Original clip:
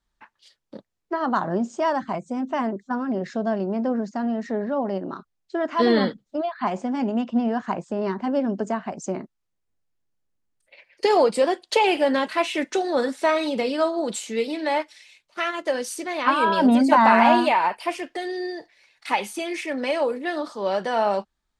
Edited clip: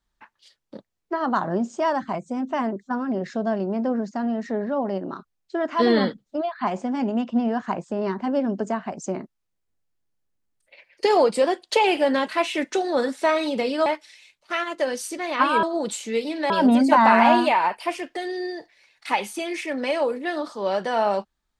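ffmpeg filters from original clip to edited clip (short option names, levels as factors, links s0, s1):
-filter_complex "[0:a]asplit=4[s0][s1][s2][s3];[s0]atrim=end=13.862[s4];[s1]atrim=start=14.728:end=16.502[s5];[s2]atrim=start=13.858:end=14.732[s6];[s3]atrim=start=16.498[s7];[s4][s5]acrossfade=d=0.004:c1=hsin:c2=hsin[s8];[s8][s6]acrossfade=d=0.004:c1=hsin:c2=hsin[s9];[s9][s7]acrossfade=d=0.004:c1=hsin:c2=hsin"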